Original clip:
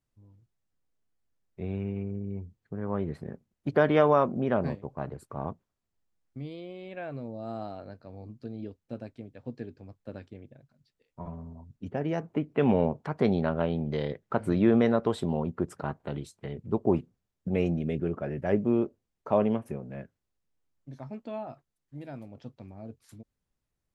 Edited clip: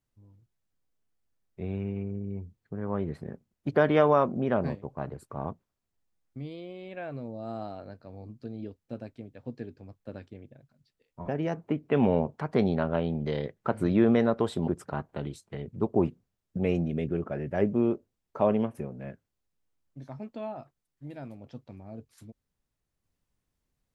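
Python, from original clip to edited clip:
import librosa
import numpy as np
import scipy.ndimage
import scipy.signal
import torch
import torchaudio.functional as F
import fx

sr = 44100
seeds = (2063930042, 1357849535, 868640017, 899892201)

y = fx.edit(x, sr, fx.cut(start_s=11.28, length_s=0.66),
    fx.cut(start_s=15.34, length_s=0.25), tone=tone)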